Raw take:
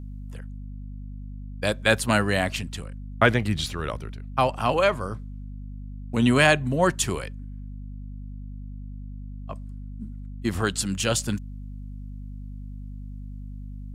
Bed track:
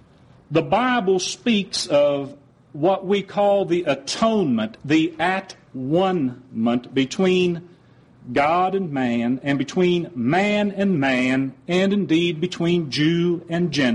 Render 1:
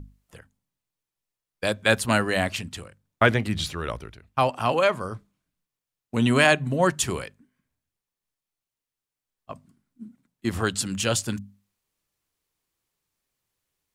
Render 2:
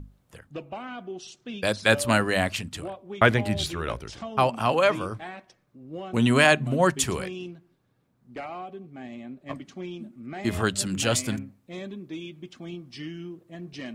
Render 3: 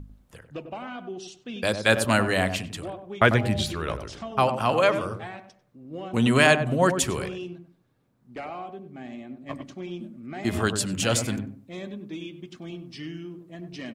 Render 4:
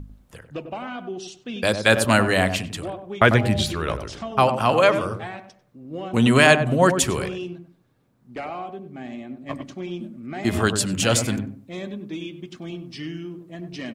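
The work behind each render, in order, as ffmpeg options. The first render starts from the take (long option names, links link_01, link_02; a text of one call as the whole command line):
ffmpeg -i in.wav -af "bandreject=frequency=50:width_type=h:width=6,bandreject=frequency=100:width_type=h:width=6,bandreject=frequency=150:width_type=h:width=6,bandreject=frequency=200:width_type=h:width=6,bandreject=frequency=250:width_type=h:width=6" out.wav
ffmpeg -i in.wav -i bed.wav -filter_complex "[1:a]volume=-18.5dB[link_01];[0:a][link_01]amix=inputs=2:normalize=0" out.wav
ffmpeg -i in.wav -filter_complex "[0:a]asplit=2[link_01][link_02];[link_02]adelay=96,lowpass=frequency=820:poles=1,volume=-6.5dB,asplit=2[link_03][link_04];[link_04]adelay=96,lowpass=frequency=820:poles=1,volume=0.29,asplit=2[link_05][link_06];[link_06]adelay=96,lowpass=frequency=820:poles=1,volume=0.29,asplit=2[link_07][link_08];[link_08]adelay=96,lowpass=frequency=820:poles=1,volume=0.29[link_09];[link_01][link_03][link_05][link_07][link_09]amix=inputs=5:normalize=0" out.wav
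ffmpeg -i in.wav -af "volume=4dB,alimiter=limit=-2dB:level=0:latency=1" out.wav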